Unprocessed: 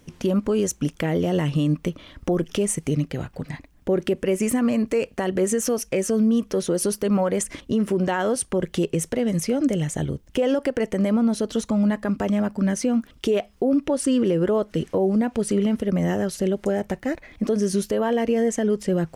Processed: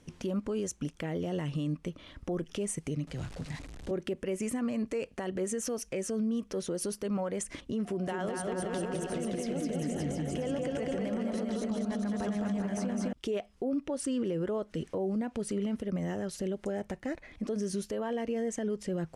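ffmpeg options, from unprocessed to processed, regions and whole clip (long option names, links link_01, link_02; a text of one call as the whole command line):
ffmpeg -i in.wav -filter_complex "[0:a]asettb=1/sr,asplit=3[link_01][link_02][link_03];[link_01]atrim=end=3.074[link_04];[link_02]atrim=start=3.07:end=3.91,asetpts=PTS-STARTPTS,afade=type=in:duration=0.004:curve=qsin,afade=type=out:start_time=0.836:duration=0.004:curve=qsin,aeval=exprs='val(0)+0.5*0.02*sgn(val(0))':channel_layout=same,lowpass=9500,acrossover=split=140|3000[link_05][link_06][link_07];[link_06]acompressor=threshold=-45dB:ratio=1.5:attack=3.2:release=140:knee=2.83:detection=peak[link_08];[link_05][link_08][link_07]amix=inputs=3:normalize=0[link_09];[link_03]atrim=start=3.906[link_10];[link_04][link_09]acrossfade=duration=0.004:curve1=hsin:curve2=qsin[link_11];[link_11][link_10]acrossfade=duration=0.004:curve1=qsin:curve2=hsin,asettb=1/sr,asplit=3[link_12][link_13][link_14];[link_12]atrim=end=7.854[link_15];[link_13]atrim=start=7.85:end=13.13,asetpts=PTS-STARTPTS,afade=type=in:duration=0.004:curve=qsin,afade=type=out:start_time=5.276:duration=0.004:curve=qsin,aeval=exprs='val(0)+0.01*sin(2*PI*710*n/s)':channel_layout=same,aecho=1:1:210|399|569.1|722.2|860|984:0.794|0.631|0.501|0.398|0.316|0.251,atrim=end_sample=232848,adynamicequalizer=threshold=0.0112:dfrequency=7400:dqfactor=0.7:tfrequency=7400:tqfactor=0.7:attack=5:release=100:ratio=0.375:range=2:mode=cutabove:tftype=highshelf[link_16];[link_14]atrim=start=13.126[link_17];[link_15][link_16]acrossfade=duration=0.004:curve1=hsin:curve2=qsin[link_18];[link_18][link_17]acrossfade=duration=0.004:curve1=qsin:curve2=hsin,lowpass=frequency=11000:width=0.5412,lowpass=frequency=11000:width=1.3066,alimiter=limit=-19.5dB:level=0:latency=1:release=218,volume=-5.5dB" out.wav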